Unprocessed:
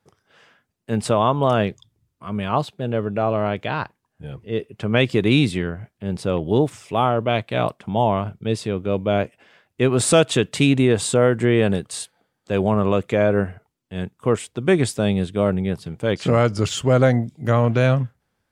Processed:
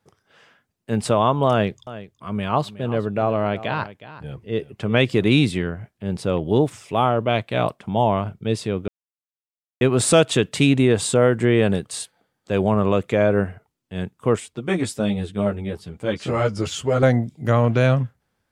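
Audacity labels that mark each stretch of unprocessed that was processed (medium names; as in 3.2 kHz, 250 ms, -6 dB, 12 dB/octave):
1.500000	5.290000	delay 367 ms -15.5 dB
8.880000	9.810000	mute
14.400000	17.030000	three-phase chorus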